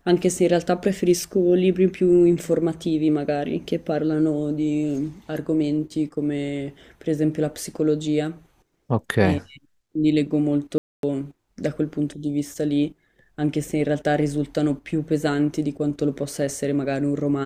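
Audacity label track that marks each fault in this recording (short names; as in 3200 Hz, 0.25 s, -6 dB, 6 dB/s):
10.780000	11.030000	gap 0.252 s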